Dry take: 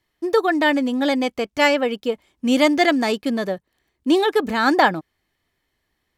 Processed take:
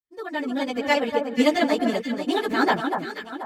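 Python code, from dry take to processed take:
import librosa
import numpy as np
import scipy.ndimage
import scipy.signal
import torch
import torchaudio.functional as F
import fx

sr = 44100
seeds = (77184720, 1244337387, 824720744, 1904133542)

y = fx.fade_in_head(x, sr, length_s=1.52)
y = fx.stretch_vocoder_free(y, sr, factor=0.56)
y = fx.echo_alternate(y, sr, ms=242, hz=1500.0, feedback_pct=63, wet_db=-4.5)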